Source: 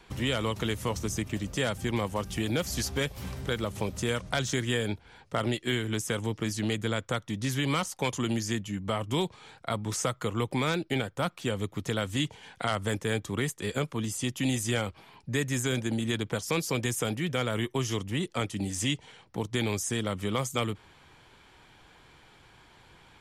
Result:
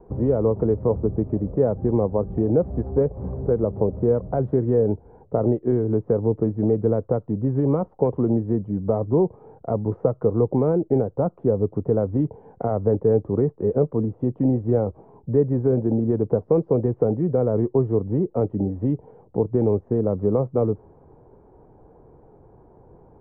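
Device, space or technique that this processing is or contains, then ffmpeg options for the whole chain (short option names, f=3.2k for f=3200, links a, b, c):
under water: -af "lowpass=f=770:w=0.5412,lowpass=f=770:w=1.3066,equalizer=f=440:t=o:w=0.5:g=7,volume=8dB"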